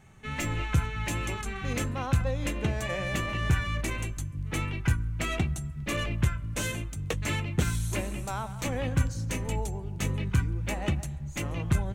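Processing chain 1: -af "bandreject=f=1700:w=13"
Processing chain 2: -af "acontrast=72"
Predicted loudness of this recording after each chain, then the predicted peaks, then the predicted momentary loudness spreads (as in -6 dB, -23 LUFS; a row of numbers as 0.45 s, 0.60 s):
-31.0 LUFS, -24.5 LUFS; -12.0 dBFS, -6.5 dBFS; 6 LU, 6 LU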